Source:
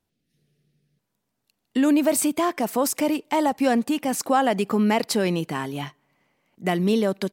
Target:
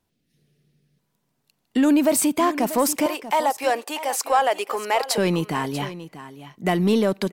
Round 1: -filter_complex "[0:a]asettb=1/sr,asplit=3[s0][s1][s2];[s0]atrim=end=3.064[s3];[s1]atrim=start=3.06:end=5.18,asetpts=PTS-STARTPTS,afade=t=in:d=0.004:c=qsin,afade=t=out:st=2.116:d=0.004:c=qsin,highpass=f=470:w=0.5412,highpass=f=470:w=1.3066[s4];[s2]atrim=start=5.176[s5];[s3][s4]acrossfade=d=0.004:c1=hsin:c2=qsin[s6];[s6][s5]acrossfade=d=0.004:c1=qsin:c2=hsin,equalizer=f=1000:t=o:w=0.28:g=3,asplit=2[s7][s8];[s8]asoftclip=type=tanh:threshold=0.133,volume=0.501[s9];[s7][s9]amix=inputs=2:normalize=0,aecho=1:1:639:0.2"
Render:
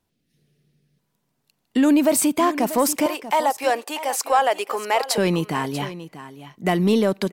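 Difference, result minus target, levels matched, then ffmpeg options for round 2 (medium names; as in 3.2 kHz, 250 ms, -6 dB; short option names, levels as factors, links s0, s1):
saturation: distortion -6 dB
-filter_complex "[0:a]asettb=1/sr,asplit=3[s0][s1][s2];[s0]atrim=end=3.064[s3];[s1]atrim=start=3.06:end=5.18,asetpts=PTS-STARTPTS,afade=t=in:d=0.004:c=qsin,afade=t=out:st=2.116:d=0.004:c=qsin,highpass=f=470:w=0.5412,highpass=f=470:w=1.3066[s4];[s2]atrim=start=5.176[s5];[s3][s4]acrossfade=d=0.004:c1=hsin:c2=qsin[s6];[s6][s5]acrossfade=d=0.004:c1=qsin:c2=hsin,equalizer=f=1000:t=o:w=0.28:g=3,asplit=2[s7][s8];[s8]asoftclip=type=tanh:threshold=0.0596,volume=0.501[s9];[s7][s9]amix=inputs=2:normalize=0,aecho=1:1:639:0.2"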